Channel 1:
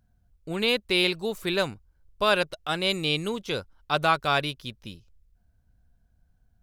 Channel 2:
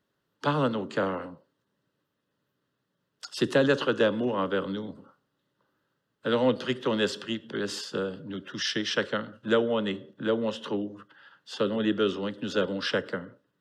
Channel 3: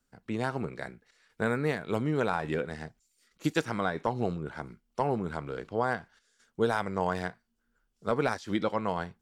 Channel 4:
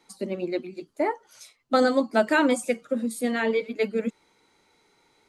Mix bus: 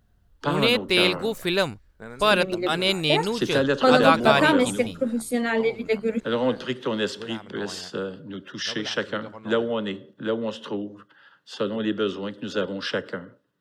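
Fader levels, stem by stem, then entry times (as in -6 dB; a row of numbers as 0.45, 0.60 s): +3.0, +0.5, -11.5, +1.5 dB; 0.00, 0.00, 0.60, 2.10 s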